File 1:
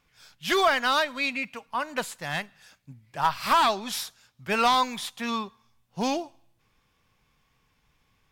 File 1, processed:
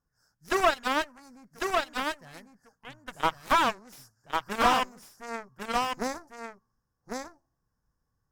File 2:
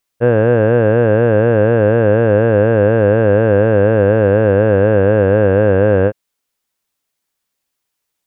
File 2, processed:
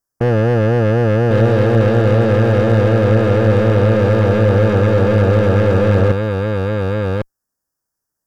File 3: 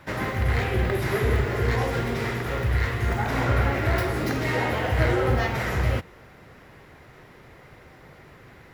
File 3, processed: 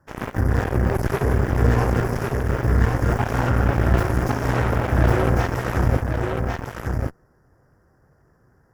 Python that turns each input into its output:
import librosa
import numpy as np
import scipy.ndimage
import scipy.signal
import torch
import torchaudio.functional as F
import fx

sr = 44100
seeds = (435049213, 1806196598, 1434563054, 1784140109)

p1 = scipy.signal.sosfilt(scipy.signal.ellip(3, 1.0, 40, [1700.0, 5100.0], 'bandstop', fs=sr, output='sos'), x)
p2 = fx.low_shelf(p1, sr, hz=200.0, db=6.5)
p3 = fx.over_compress(p2, sr, threshold_db=-19.0, ratio=-0.5)
p4 = p2 + F.gain(torch.from_numpy(p3), 0.0).numpy()
p5 = fx.cheby_harmonics(p4, sr, harmonics=(6, 7), levels_db=(-27, -16), full_scale_db=-0.5)
p6 = 10.0 ** (-8.0 / 20.0) * np.tanh(p5 / 10.0 ** (-8.0 / 20.0))
p7 = p6 + fx.echo_single(p6, sr, ms=1100, db=-4.5, dry=0)
p8 = fx.slew_limit(p7, sr, full_power_hz=210.0)
y = F.gain(torch.from_numpy(p8), -1.0).numpy()